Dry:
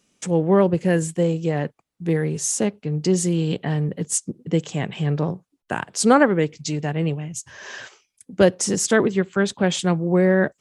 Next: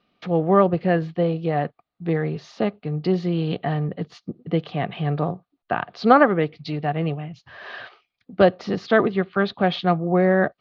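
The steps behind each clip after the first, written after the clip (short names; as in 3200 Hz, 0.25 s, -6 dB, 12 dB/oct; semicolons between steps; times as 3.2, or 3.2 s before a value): elliptic low-pass 4300 Hz, stop band 50 dB; small resonant body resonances 710/1200 Hz, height 11 dB, ringing for 30 ms; gain -1 dB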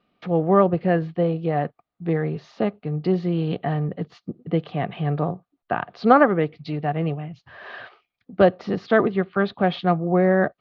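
high shelf 4300 Hz -11.5 dB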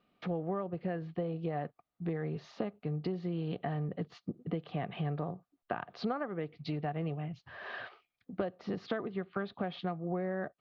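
compressor 12:1, threshold -27 dBFS, peak gain reduction 19 dB; gain -4.5 dB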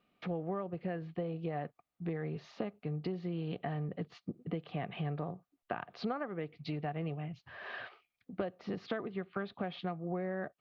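bell 2400 Hz +3.5 dB 0.63 oct; gain -2 dB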